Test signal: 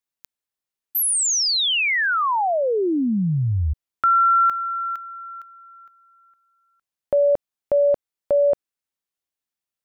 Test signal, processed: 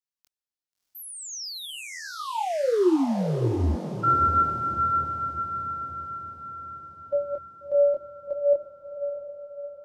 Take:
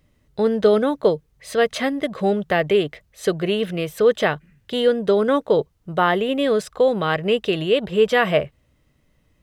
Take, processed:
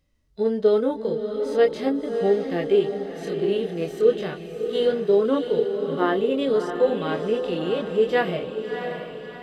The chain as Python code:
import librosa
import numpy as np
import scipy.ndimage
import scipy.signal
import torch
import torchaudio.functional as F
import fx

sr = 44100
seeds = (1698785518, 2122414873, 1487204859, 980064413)

y = fx.chorus_voices(x, sr, voices=6, hz=0.39, base_ms=24, depth_ms=2.1, mix_pct=35)
y = fx.hpss(y, sr, part='percussive', gain_db=-14)
y = fx.peak_eq(y, sr, hz=5200.0, db=6.0, octaves=1.0)
y = fx.echo_diffused(y, sr, ms=658, feedback_pct=52, wet_db=-7)
y = fx.dynamic_eq(y, sr, hz=360.0, q=1.9, threshold_db=-37.0, ratio=4.0, max_db=8)
y = F.gain(torch.from_numpy(y), -3.5).numpy()